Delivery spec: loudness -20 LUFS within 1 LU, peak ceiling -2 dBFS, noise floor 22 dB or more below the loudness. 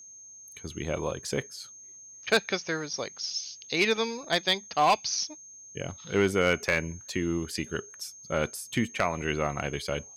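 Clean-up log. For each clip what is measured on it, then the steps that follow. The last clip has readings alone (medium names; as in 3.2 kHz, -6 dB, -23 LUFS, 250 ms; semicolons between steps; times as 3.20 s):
clipped samples 0.3%; clipping level -15.5 dBFS; steady tone 6.4 kHz; tone level -46 dBFS; loudness -29.0 LUFS; peak level -15.5 dBFS; loudness target -20.0 LUFS
-> clip repair -15.5 dBFS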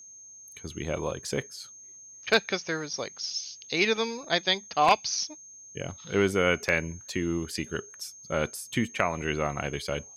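clipped samples 0.0%; steady tone 6.4 kHz; tone level -46 dBFS
-> band-stop 6.4 kHz, Q 30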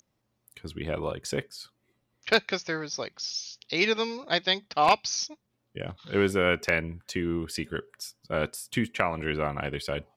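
steady tone not found; loudness -28.5 LUFS; peak level -6.5 dBFS; loudness target -20.0 LUFS
-> trim +8.5 dB; peak limiter -2 dBFS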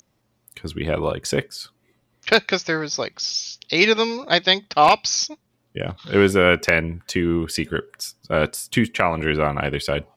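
loudness -20.5 LUFS; peak level -2.0 dBFS; noise floor -68 dBFS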